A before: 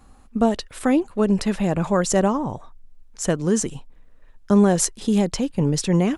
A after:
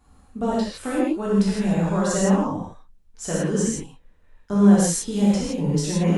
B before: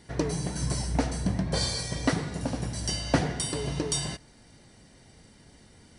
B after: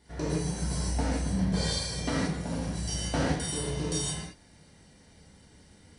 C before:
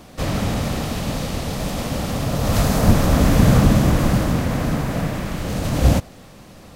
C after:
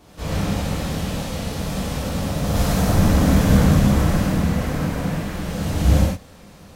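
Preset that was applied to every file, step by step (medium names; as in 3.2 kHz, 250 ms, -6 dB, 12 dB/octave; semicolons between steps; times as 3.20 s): gated-style reverb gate 190 ms flat, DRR -7.5 dB; trim -10 dB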